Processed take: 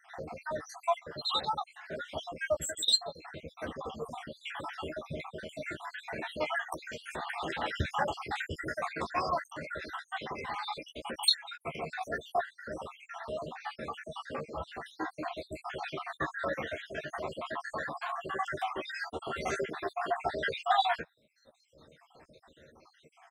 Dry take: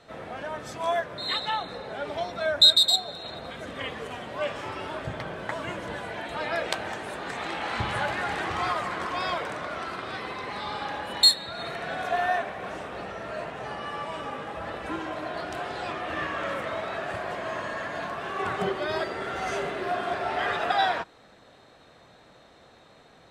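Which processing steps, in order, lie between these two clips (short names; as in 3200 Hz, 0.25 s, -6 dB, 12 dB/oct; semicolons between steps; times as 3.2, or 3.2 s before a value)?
random spectral dropouts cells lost 70%; reverb removal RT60 1.9 s; doubler 13 ms -6 dB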